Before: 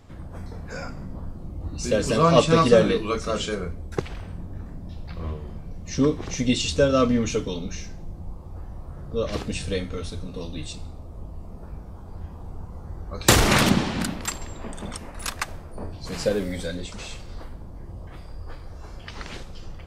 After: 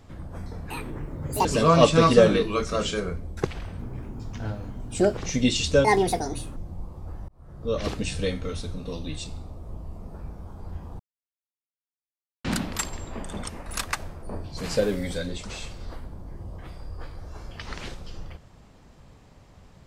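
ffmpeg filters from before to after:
ffmpeg -i in.wav -filter_complex "[0:a]asplit=10[link_01][link_02][link_03][link_04][link_05][link_06][link_07][link_08][link_09][link_10];[link_01]atrim=end=0.704[link_11];[link_02]atrim=start=0.7:end=2,asetpts=PTS-STARTPTS,asetrate=76293,aresample=44100[link_12];[link_03]atrim=start=1.996:end=4.344[link_13];[link_04]atrim=start=4.34:end=6.22,asetpts=PTS-STARTPTS,asetrate=59976,aresample=44100[link_14];[link_05]atrim=start=6.216:end=6.894[link_15];[link_06]atrim=start=6.89:end=8.05,asetpts=PTS-STARTPTS,asetrate=71001,aresample=44100[link_16];[link_07]atrim=start=8.046:end=8.77,asetpts=PTS-STARTPTS,afade=type=out:start_time=0.72:duration=0.004:curve=hsin[link_17];[link_08]atrim=start=8.77:end=12.48,asetpts=PTS-STARTPTS,afade=type=in:duration=0.48,afade=type=out:start_time=3.706:duration=0.004:curve=hsin[link_18];[link_09]atrim=start=12.48:end=13.93,asetpts=PTS-STARTPTS,volume=0[link_19];[link_10]atrim=start=13.93,asetpts=PTS-STARTPTS,afade=type=in:duration=0.004:curve=hsin[link_20];[link_11][link_12]acrossfade=duration=0.004:curve1=hsin:curve2=hsin[link_21];[link_21][link_13]acrossfade=duration=0.004:curve1=hsin:curve2=hsin[link_22];[link_22][link_14]acrossfade=duration=0.004:curve1=hsin:curve2=hsin[link_23];[link_23][link_15]acrossfade=duration=0.004:curve1=hsin:curve2=hsin[link_24];[link_24][link_16]acrossfade=duration=0.004:curve1=hsin:curve2=hsin[link_25];[link_17][link_18][link_19][link_20]concat=n=4:v=0:a=1[link_26];[link_25][link_26]acrossfade=duration=0.004:curve1=hsin:curve2=hsin" out.wav

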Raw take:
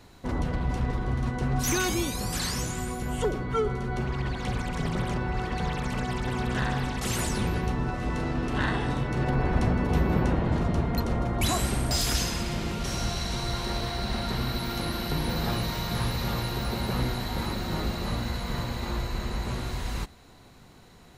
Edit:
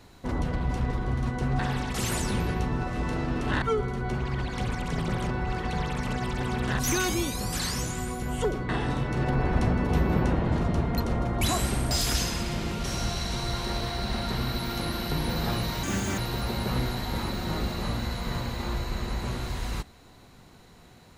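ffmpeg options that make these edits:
ffmpeg -i in.wav -filter_complex "[0:a]asplit=7[link_01][link_02][link_03][link_04][link_05][link_06][link_07];[link_01]atrim=end=1.592[link_08];[link_02]atrim=start=6.658:end=8.692[link_09];[link_03]atrim=start=3.488:end=6.662[link_10];[link_04]atrim=start=1.588:end=3.492[link_11];[link_05]atrim=start=8.688:end=15.834[link_12];[link_06]atrim=start=15.83:end=16.41,asetpts=PTS-STARTPTS,asetrate=73206,aresample=44100,atrim=end_sample=15408,asetpts=PTS-STARTPTS[link_13];[link_07]atrim=start=16.406[link_14];[link_08][link_09]acrossfade=duration=0.004:curve1=hsin:curve2=hsin[link_15];[link_15][link_10]acrossfade=duration=0.004:curve1=hsin:curve2=hsin[link_16];[link_16][link_11]acrossfade=duration=0.004:curve1=hsin:curve2=hsin[link_17];[link_17][link_12]acrossfade=duration=0.004:curve1=hsin:curve2=hsin[link_18];[link_18][link_13]acrossfade=duration=0.004:curve1=hsin:curve2=hsin[link_19];[link_19][link_14]acrossfade=duration=0.004:curve1=hsin:curve2=hsin" out.wav

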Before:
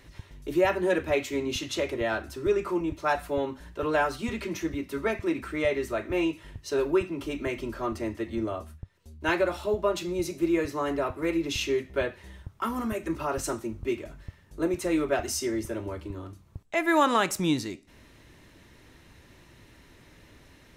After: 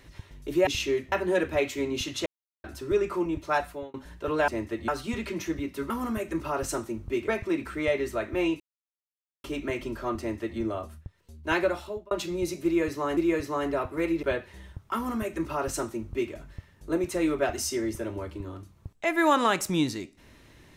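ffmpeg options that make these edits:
ffmpeg -i in.wav -filter_complex "[0:a]asplit=15[link_01][link_02][link_03][link_04][link_05][link_06][link_07][link_08][link_09][link_10][link_11][link_12][link_13][link_14][link_15];[link_01]atrim=end=0.672[link_16];[link_02]atrim=start=11.478:end=11.932[link_17];[link_03]atrim=start=0.668:end=1.81,asetpts=PTS-STARTPTS,afade=type=out:start_time=1.138:duration=0.004:curve=hsin[link_18];[link_04]atrim=start=1.81:end=2.19,asetpts=PTS-STARTPTS,volume=0[link_19];[link_05]atrim=start=2.19:end=3.49,asetpts=PTS-STARTPTS,afade=type=in:duration=0.004:curve=hsin,afade=type=out:start_time=0.93:duration=0.37[link_20];[link_06]atrim=start=3.49:end=4.032,asetpts=PTS-STARTPTS,afade=type=in:duration=0.004:curve=hsin[link_21];[link_07]atrim=start=7.958:end=8.362[link_22];[link_08]atrim=start=4.028:end=5.052[link_23];[link_09]atrim=start=12.648:end=14.032[link_24];[link_10]atrim=start=5.048:end=6.37,asetpts=PTS-STARTPTS,afade=type=out:start_time=1.318:duration=0.004:curve=hsin[link_25];[link_11]atrim=start=6.37:end=7.21,asetpts=PTS-STARTPTS,volume=0[link_26];[link_12]atrim=start=7.21:end=9.88,asetpts=PTS-STARTPTS,afade=type=in:duration=0.004:curve=hsin,afade=type=out:start_time=2.23:duration=0.44[link_27];[link_13]atrim=start=9.88:end=10.942,asetpts=PTS-STARTPTS,afade=type=in:duration=0.004:curve=hsin[link_28];[link_14]atrim=start=10.418:end=11.482[link_29];[link_15]atrim=start=11.928[link_30];[link_16][link_17]acrossfade=duration=0.004:curve1=hsin:curve2=hsin[link_31];[link_18][link_19][link_20][link_21]concat=n=4:v=0:a=1[link_32];[link_31][link_32]acrossfade=duration=0.004:curve1=hsin:curve2=hsin[link_33];[link_33][link_22]acrossfade=duration=0.004:curve1=hsin:curve2=hsin[link_34];[link_34][link_23]acrossfade=duration=0.004:curve1=hsin:curve2=hsin[link_35];[link_35][link_24]acrossfade=duration=0.004:curve1=hsin:curve2=hsin[link_36];[link_25][link_26][link_27][link_28]concat=n=4:v=0:a=1[link_37];[link_36][link_37]acrossfade=duration=0.004:curve1=hsin:curve2=hsin[link_38];[link_38][link_29]acrossfade=duration=0.004:curve1=hsin:curve2=hsin[link_39];[link_39][link_30]acrossfade=duration=0.004:curve1=hsin:curve2=hsin" out.wav

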